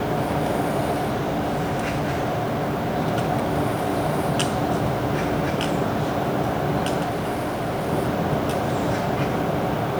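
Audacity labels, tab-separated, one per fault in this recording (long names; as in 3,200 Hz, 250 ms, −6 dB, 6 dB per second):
0.900000	2.970000	clipping −20 dBFS
7.020000	7.890000	clipping −22 dBFS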